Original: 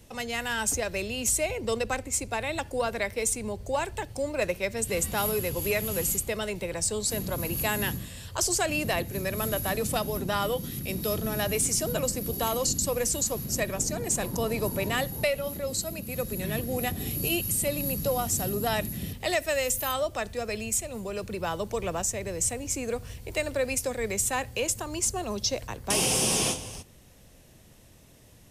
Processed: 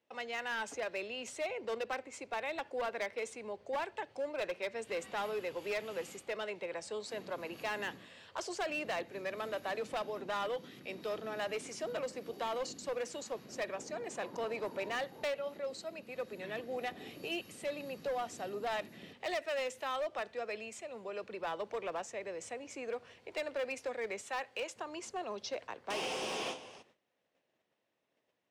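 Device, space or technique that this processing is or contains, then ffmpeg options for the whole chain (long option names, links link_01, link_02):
walkie-talkie: -filter_complex "[0:a]asettb=1/sr,asplit=3[link_01][link_02][link_03];[link_01]atrim=end=24.214[link_04];[link_02]atrim=start=24.21:end=24.76,asetpts=PTS-STARTPTS,afade=type=in:duration=0.004:curve=qsin,afade=type=out:start_time=0.546:duration=0.004:curve=qsin,lowshelf=frequency=300:gain=-10[link_05];[link_03]atrim=start=24.756[link_06];[link_04][link_05]acrossfade=duration=0.004:curve1=hsin:curve2=qsin[link_07];[link_07][link_06]acrossfade=duration=0.004:curve1=qsin:curve2=hsin,highpass=410,lowpass=2900,asoftclip=type=hard:threshold=-27dB,agate=range=-15dB:threshold=-60dB:ratio=16:detection=peak,volume=-5dB"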